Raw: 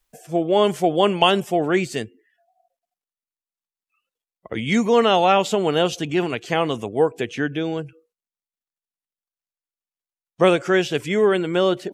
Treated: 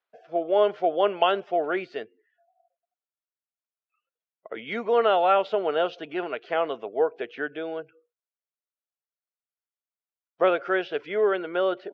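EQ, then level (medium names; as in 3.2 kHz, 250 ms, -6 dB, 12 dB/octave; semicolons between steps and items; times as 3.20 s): distance through air 190 m; cabinet simulation 400–4700 Hz, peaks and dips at 430 Hz +5 dB, 640 Hz +8 dB, 1.4 kHz +8 dB; -7.0 dB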